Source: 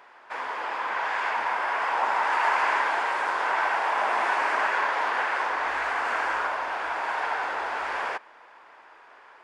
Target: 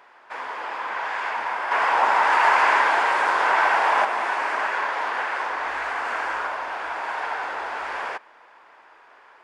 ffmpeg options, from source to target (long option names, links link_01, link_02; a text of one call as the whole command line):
ffmpeg -i in.wav -filter_complex "[0:a]asettb=1/sr,asplit=3[link_01][link_02][link_03];[link_01]atrim=end=1.714[link_04];[link_02]atrim=start=1.71:end=4.05,asetpts=PTS-STARTPTS,afade=type=in:duration=0.004:curve=qsin,afade=type=out:start_time=2.336:duration=0.004:curve=qsin,acontrast=53[link_05];[link_03]atrim=start=4.046[link_06];[link_04][link_05]acrossfade=duration=0.004:curve1=hsin:curve2=qsin[link_07];[link_07][link_06]acrossfade=duration=0.004:curve1=qsin:curve2=hsin" out.wav